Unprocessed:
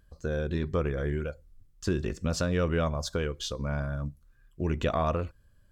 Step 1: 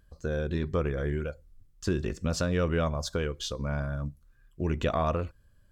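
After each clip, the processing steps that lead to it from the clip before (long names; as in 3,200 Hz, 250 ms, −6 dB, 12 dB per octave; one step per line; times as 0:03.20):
no processing that can be heard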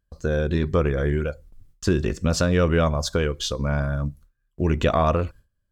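noise gate with hold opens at −48 dBFS
level +7.5 dB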